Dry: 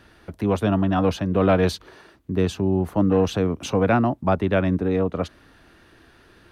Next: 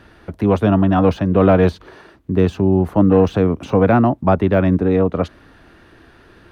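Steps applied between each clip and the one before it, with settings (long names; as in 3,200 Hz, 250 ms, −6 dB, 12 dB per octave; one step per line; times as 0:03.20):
de-essing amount 100%
high-shelf EQ 3,300 Hz −8 dB
level +6.5 dB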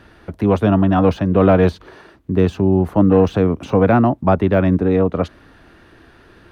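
no processing that can be heard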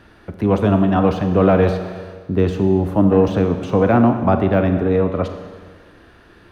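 convolution reverb RT60 1.6 s, pre-delay 30 ms, DRR 6.5 dB
level −1.5 dB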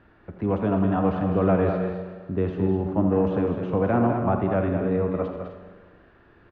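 low-pass filter 2,200 Hz 12 dB per octave
on a send: multi-tap delay 83/205/254 ms −10.5/−7.5/−11.5 dB
on the sum: level −8 dB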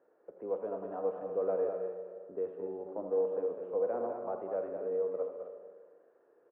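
four-pole ladder band-pass 530 Hz, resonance 70%
dynamic equaliser 450 Hz, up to −5 dB, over −39 dBFS, Q 0.8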